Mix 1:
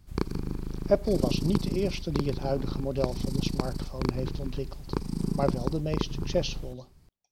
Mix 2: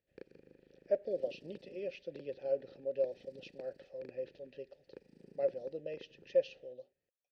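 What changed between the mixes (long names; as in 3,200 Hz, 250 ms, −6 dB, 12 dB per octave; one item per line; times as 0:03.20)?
background −7.0 dB
master: add formant filter e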